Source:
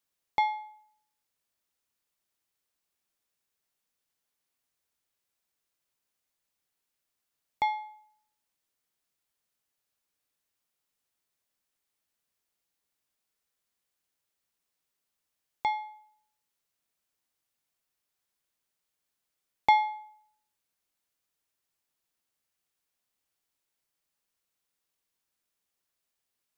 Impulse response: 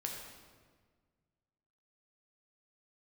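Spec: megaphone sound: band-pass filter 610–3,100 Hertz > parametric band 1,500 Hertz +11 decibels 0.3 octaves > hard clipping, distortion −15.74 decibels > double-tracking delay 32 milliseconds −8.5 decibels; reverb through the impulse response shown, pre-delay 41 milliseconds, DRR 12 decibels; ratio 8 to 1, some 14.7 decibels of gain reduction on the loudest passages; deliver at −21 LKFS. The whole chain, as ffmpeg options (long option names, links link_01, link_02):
-filter_complex "[0:a]acompressor=threshold=-32dB:ratio=8,asplit=2[link_01][link_02];[1:a]atrim=start_sample=2205,adelay=41[link_03];[link_02][link_03]afir=irnorm=-1:irlink=0,volume=-12.5dB[link_04];[link_01][link_04]amix=inputs=2:normalize=0,highpass=610,lowpass=3100,equalizer=frequency=1500:width_type=o:width=0.3:gain=11,asoftclip=type=hard:threshold=-28dB,asplit=2[link_05][link_06];[link_06]adelay=32,volume=-8.5dB[link_07];[link_05][link_07]amix=inputs=2:normalize=0,volume=21dB"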